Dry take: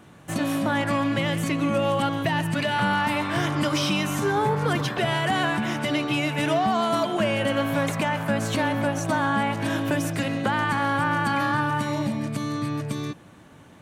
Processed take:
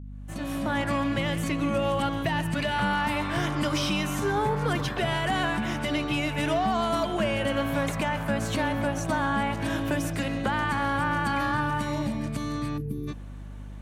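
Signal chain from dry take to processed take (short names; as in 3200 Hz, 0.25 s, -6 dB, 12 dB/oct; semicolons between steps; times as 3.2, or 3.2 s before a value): opening faded in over 0.78 s; hum 50 Hz, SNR 12 dB; spectral gain 12.78–13.08, 490–10000 Hz -21 dB; gain -3 dB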